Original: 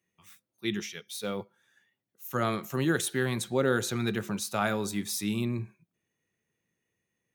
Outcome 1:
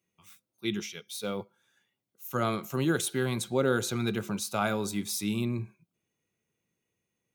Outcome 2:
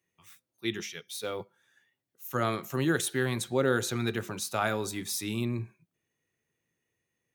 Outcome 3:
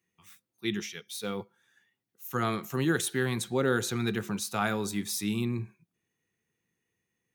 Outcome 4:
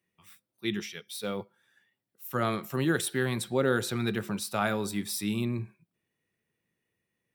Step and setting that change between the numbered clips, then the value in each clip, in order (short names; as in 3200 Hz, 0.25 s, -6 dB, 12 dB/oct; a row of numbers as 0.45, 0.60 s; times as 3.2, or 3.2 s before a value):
notch, frequency: 1800, 200, 590, 6500 Hz